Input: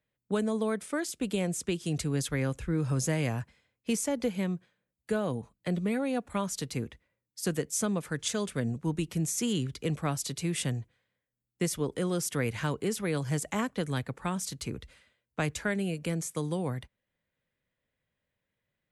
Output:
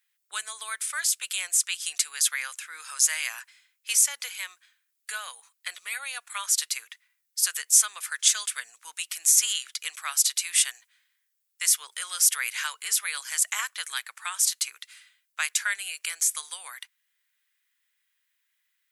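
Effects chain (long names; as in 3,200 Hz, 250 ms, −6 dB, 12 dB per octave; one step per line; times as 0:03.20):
high-pass filter 1,300 Hz 24 dB per octave
high-shelf EQ 4,500 Hz +10.5 dB
level +6.5 dB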